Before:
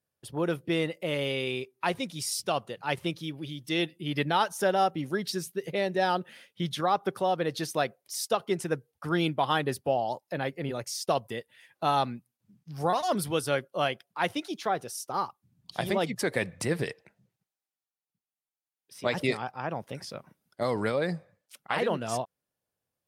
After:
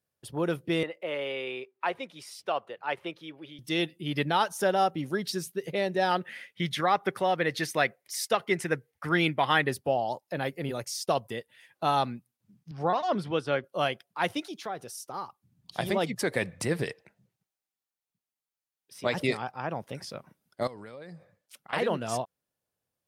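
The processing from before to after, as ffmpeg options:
ffmpeg -i in.wav -filter_complex "[0:a]asettb=1/sr,asplit=3[link_01][link_02][link_03];[link_01]atrim=end=0.834[link_04];[link_02]atrim=start=0.83:end=3.59,asetpts=PTS-STARTPTS,afade=type=in:duration=0.004:curve=qsin,afade=type=out:start_time=2.756:duration=0.004:curve=qsin,acrossover=split=350 3000:gain=0.141 1 0.158[link_05][link_06][link_07];[link_05][link_06][link_07]amix=inputs=3:normalize=0[link_08];[link_03]atrim=start=3.586[link_09];[link_04][link_08]acrossfade=duration=0.004:curve1=hsin:curve2=qsin[link_10];[link_10][link_09]acrossfade=duration=0.004:curve1=qsin:curve2=hsin,asettb=1/sr,asplit=3[link_11][link_12][link_13];[link_11]atrim=end=6.114[link_14];[link_12]atrim=start=6.11:end=9.69,asetpts=PTS-STARTPTS,afade=type=in:duration=0.004:curve=qsin,afade=type=out:start_time=3.576:duration=0.004:curve=qsin,equalizer=frequency=2000:width_type=o:width=0.66:gain=12[link_15];[link_13]atrim=start=9.686[link_16];[link_14][link_15]acrossfade=duration=0.004:curve1=hsin:curve2=qsin[link_17];[link_17][link_16]acrossfade=duration=0.004:curve1=qsin:curve2=hsin,asettb=1/sr,asplit=3[link_18][link_19][link_20];[link_18]atrim=end=10.374[link_21];[link_19]atrim=start=10.37:end=10.85,asetpts=PTS-STARTPTS,afade=type=in:duration=0.004:curve=qsin,afade=type=out:start_time=0.476:duration=0.004:curve=qsin,highshelf=frequency=8500:gain=11[link_22];[link_20]atrim=start=10.846[link_23];[link_21][link_22]acrossfade=duration=0.004:curve1=hsin:curve2=qsin[link_24];[link_24][link_23]acrossfade=duration=0.004:curve1=qsin:curve2=hsin,asettb=1/sr,asplit=3[link_25][link_26][link_27];[link_25]atrim=end=12.714[link_28];[link_26]atrim=start=12.71:end=13.64,asetpts=PTS-STARTPTS,afade=type=in:duration=0.004:curve=qsin,afade=type=out:start_time=0.926:duration=0.004:curve=qsin,highpass=120,lowpass=3300[link_29];[link_27]atrim=start=13.636[link_30];[link_28][link_29]acrossfade=duration=0.004:curve1=hsin:curve2=qsin[link_31];[link_31][link_30]acrossfade=duration=0.004:curve1=qsin:curve2=hsin,asettb=1/sr,asplit=3[link_32][link_33][link_34];[link_32]atrim=end=14.414[link_35];[link_33]atrim=start=14.41:end=15.76,asetpts=PTS-STARTPTS,afade=type=in:duration=0.004:curve=qsin,afade=type=out:start_time=1.346:duration=0.004:curve=qsin,acompressor=threshold=-43dB:ratio=1.5:attack=3.2:release=140:knee=1:detection=peak[link_36];[link_34]atrim=start=15.756[link_37];[link_35][link_36]acrossfade=duration=0.004:curve1=hsin:curve2=qsin[link_38];[link_38][link_37]acrossfade=duration=0.004:curve1=qsin:curve2=hsin,asettb=1/sr,asplit=3[link_39][link_40][link_41];[link_39]atrim=end=20.674[link_42];[link_40]atrim=start=20.67:end=21.73,asetpts=PTS-STARTPTS,afade=type=in:duration=0.004:curve=qsin,afade=type=out:start_time=1.056:duration=0.004:curve=qsin,acompressor=threshold=-42dB:ratio=6:attack=3.2:release=140:knee=1:detection=peak[link_43];[link_41]atrim=start=21.726[link_44];[link_42][link_43]acrossfade=duration=0.004:curve1=hsin:curve2=qsin[link_45];[link_45][link_44]acrossfade=duration=0.004:curve1=qsin:curve2=hsin" out.wav

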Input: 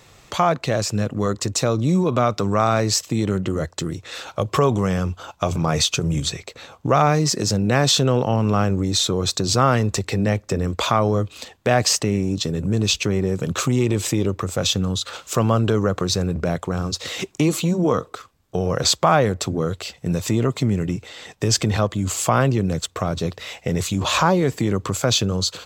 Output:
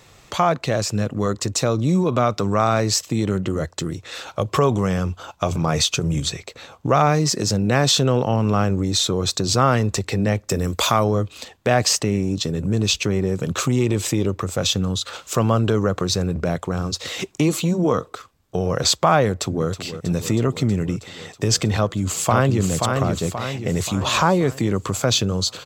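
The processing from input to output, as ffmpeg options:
ffmpeg -i in.wav -filter_complex "[0:a]asplit=3[link_01][link_02][link_03];[link_01]afade=type=out:start_time=10.48:duration=0.02[link_04];[link_02]aemphasis=mode=production:type=50kf,afade=type=in:start_time=10.48:duration=0.02,afade=type=out:start_time=11.03:duration=0.02[link_05];[link_03]afade=type=in:start_time=11.03:duration=0.02[link_06];[link_04][link_05][link_06]amix=inputs=3:normalize=0,asplit=2[link_07][link_08];[link_08]afade=type=in:start_time=19.28:duration=0.01,afade=type=out:start_time=19.68:duration=0.01,aecho=0:1:320|640|960|1280|1600|1920|2240|2560|2880|3200|3520|3840:0.251189|0.200951|0.160761|0.128609|0.102887|0.0823095|0.0658476|0.0526781|0.0421425|0.033714|0.0269712|0.0215769[link_09];[link_07][link_09]amix=inputs=2:normalize=0,asplit=2[link_10][link_11];[link_11]afade=type=in:start_time=21.77:duration=0.01,afade=type=out:start_time=22.62:duration=0.01,aecho=0:1:530|1060|1590|2120|2650|3180:0.595662|0.297831|0.148916|0.0744578|0.0372289|0.0186144[link_12];[link_10][link_12]amix=inputs=2:normalize=0" out.wav

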